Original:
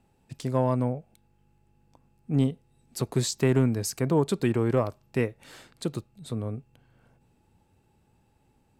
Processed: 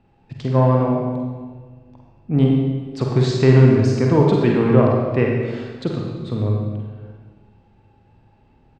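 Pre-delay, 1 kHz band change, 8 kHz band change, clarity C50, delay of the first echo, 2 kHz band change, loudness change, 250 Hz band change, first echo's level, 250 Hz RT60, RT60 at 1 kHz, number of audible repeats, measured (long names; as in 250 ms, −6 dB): 37 ms, +9.5 dB, can't be measured, 1.0 dB, 48 ms, +9.0 dB, +10.0 dB, +10.0 dB, −6.5 dB, 1.7 s, 1.4 s, 1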